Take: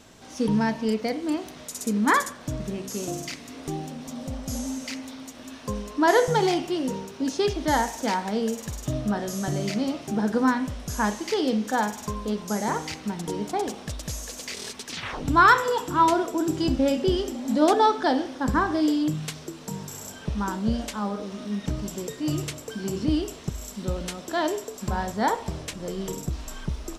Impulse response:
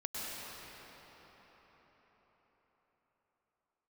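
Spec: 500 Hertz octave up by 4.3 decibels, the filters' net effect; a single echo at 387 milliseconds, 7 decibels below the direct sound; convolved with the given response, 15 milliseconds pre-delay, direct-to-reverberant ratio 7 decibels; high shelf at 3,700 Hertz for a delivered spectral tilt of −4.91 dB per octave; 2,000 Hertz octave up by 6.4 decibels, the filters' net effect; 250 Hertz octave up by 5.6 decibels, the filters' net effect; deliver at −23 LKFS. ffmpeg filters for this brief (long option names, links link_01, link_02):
-filter_complex "[0:a]equalizer=frequency=250:width_type=o:gain=6,equalizer=frequency=500:width_type=o:gain=3,equalizer=frequency=2000:width_type=o:gain=7.5,highshelf=frequency=3700:gain=3.5,aecho=1:1:387:0.447,asplit=2[link_01][link_02];[1:a]atrim=start_sample=2205,adelay=15[link_03];[link_02][link_03]afir=irnorm=-1:irlink=0,volume=-10.5dB[link_04];[link_01][link_04]amix=inputs=2:normalize=0,volume=-2.5dB"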